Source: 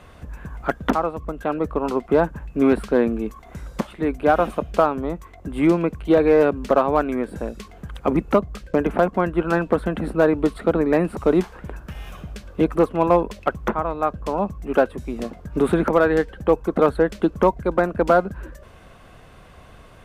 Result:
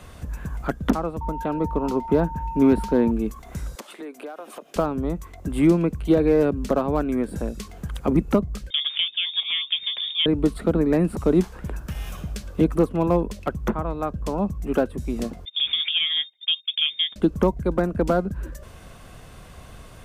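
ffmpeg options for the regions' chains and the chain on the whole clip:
-filter_complex "[0:a]asettb=1/sr,asplit=3[s0][s1][s2];[s0]atrim=end=1.214[s3];[s1]atrim=start=1.21:end=3.11,asetpts=PTS-STARTPTS,afade=t=in:d=0.004:c=qsin,afade=t=out:st=1.896:d=0.004:c=qsin,equalizer=f=8500:w=5.9:g=-8,aeval=exprs='val(0)+0.0501*sin(2*PI*910*n/s)':c=same[s4];[s2]atrim=start=3.106[s5];[s3][s4]acrossfade=d=0.004:c1=hsin:c2=qsin[s6];[s6][s5]acrossfade=d=0.004:c1=qsin:c2=hsin,asettb=1/sr,asplit=3[s7][s8][s9];[s7]atrim=end=3.754[s10];[s8]atrim=start=3.75:end=4.76,asetpts=PTS-STARTPTS,afade=t=in:d=0.004:c=qsin,afade=t=out:st=1.006:d=0.004:c=qsin,highpass=f=310:w=0.5412,highpass=f=310:w=1.3066,acompressor=threshold=0.0178:ratio=4:attack=3.2:release=140:knee=1:detection=peak[s11];[s9]atrim=start=4.756[s12];[s10][s11]acrossfade=d=0.004:c1=hsin:c2=qsin[s13];[s13][s12]acrossfade=d=0.004:c1=qsin:c2=hsin,asettb=1/sr,asplit=3[s14][s15][s16];[s14]atrim=end=8.704[s17];[s15]atrim=start=8.7:end=10.26,asetpts=PTS-STARTPTS,afade=t=in:d=0.004:c=qsin,afade=t=out:st=1.556:d=0.004:c=qsin,lowpass=f=3100:t=q:w=0.5098,lowpass=f=3100:t=q:w=0.6013,lowpass=f=3100:t=q:w=0.9,lowpass=f=3100:t=q:w=2.563,afreqshift=-3700,bandreject=f=60:t=h:w=6,bandreject=f=120:t=h:w=6,bandreject=f=180:t=h:w=6,bandreject=f=240:t=h:w=6,bandreject=f=300:t=h:w=6,bandreject=f=360:t=h:w=6,bandreject=f=420:t=h:w=6[s18];[s16]atrim=start=10.256[s19];[s17][s18]acrossfade=d=0.004:c1=hsin:c2=qsin[s20];[s20][s19]acrossfade=d=0.004:c1=qsin:c2=hsin,asettb=1/sr,asplit=3[s21][s22][s23];[s21]atrim=end=15.454[s24];[s22]atrim=start=15.45:end=17.16,asetpts=PTS-STARTPTS,afade=t=in:d=0.004:c=qsin,afade=t=out:st=1.706:d=0.004:c=qsin,agate=range=0.0398:threshold=0.0251:ratio=16:release=100:detection=peak,lowpass=f=3100:t=q:w=0.5098,lowpass=f=3100:t=q:w=0.6013,lowpass=f=3100:t=q:w=0.9,lowpass=f=3100:t=q:w=2.563,afreqshift=-3700[s25];[s23]atrim=start=17.156[s26];[s24][s25]acrossfade=d=0.004:c1=hsin:c2=qsin[s27];[s27][s26]acrossfade=d=0.004:c1=qsin:c2=hsin,acrossover=split=410[s28][s29];[s29]acompressor=threshold=0.0112:ratio=1.5[s30];[s28][s30]amix=inputs=2:normalize=0,bass=f=250:g=4,treble=f=4000:g=9"

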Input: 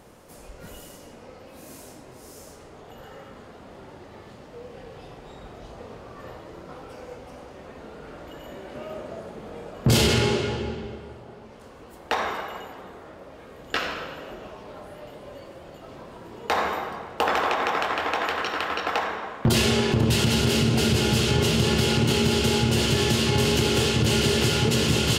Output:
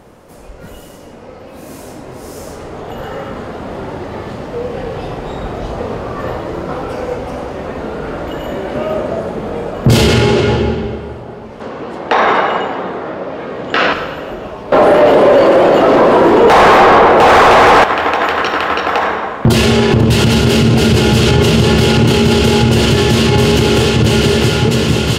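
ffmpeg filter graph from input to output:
-filter_complex "[0:a]asettb=1/sr,asplit=3[s0][s1][s2];[s0]atrim=end=11.604[s3];[s1]atrim=start=11.6:end=13.93,asetpts=PTS-STARTPTS,afade=t=in:d=0.004:c=qsin,afade=t=out:st=2.326:d=0.004:c=qsin,highpass=140,lowpass=4900,acontrast=77[s4];[s2]atrim=start=13.926[s5];[s3][s4]acrossfade=d=0.004:c1=hsin:c2=qsin[s6];[s6][s5]acrossfade=d=0.004:c1=qsin:c2=hsin,asettb=1/sr,asplit=3[s7][s8][s9];[s7]atrim=end=14.724[s10];[s8]atrim=start=14.72:end=17.84,asetpts=PTS-STARTPTS,afade=t=in:d=0.004:c=qsin,afade=t=out:st=3.116:d=0.004:c=qsin,equalizer=f=350:w=0.55:g=8.5,asplit=2[s11][s12];[s12]highpass=f=720:p=1,volume=39.8,asoftclip=type=tanh:threshold=0.531[s13];[s11][s13]amix=inputs=2:normalize=0,lowpass=f=3900:p=1,volume=0.501[s14];[s9]atrim=start=17.836[s15];[s10][s14]acrossfade=d=0.004:c1=hsin:c2=qsin[s16];[s16][s15]acrossfade=d=0.004:c1=qsin:c2=hsin,highshelf=f=2800:g=-7.5,dynaudnorm=f=410:g=11:m=3.55,alimiter=level_in=3.35:limit=0.891:release=50:level=0:latency=1,volume=0.891"

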